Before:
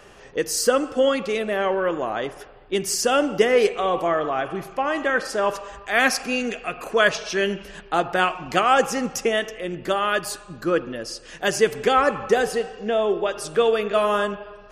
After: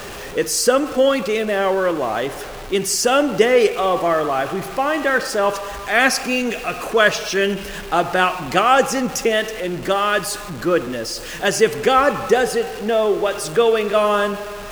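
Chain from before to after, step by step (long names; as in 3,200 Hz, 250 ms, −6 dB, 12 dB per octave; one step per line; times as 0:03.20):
converter with a step at zero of −31.5 dBFS
level +3 dB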